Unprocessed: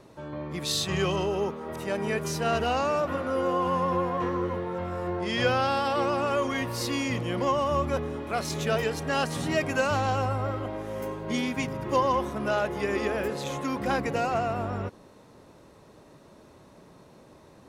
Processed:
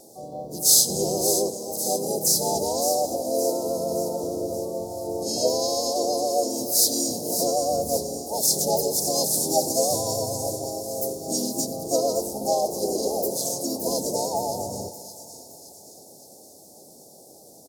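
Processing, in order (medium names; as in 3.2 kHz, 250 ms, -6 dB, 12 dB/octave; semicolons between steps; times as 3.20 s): Chebyshev band-stop 650–4900 Hz, order 4; RIAA curve recording; hum notches 60/120/180/240/300/360 Hz; harmony voices -3 st -7 dB, +4 st -2 dB; vibrato 3.3 Hz 7 cents; on a send: feedback echo behind a high-pass 569 ms, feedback 54%, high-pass 4.5 kHz, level -7.5 dB; on the sum: plate-style reverb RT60 3.7 s, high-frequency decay 0.75×, DRR 14 dB; trim +4.5 dB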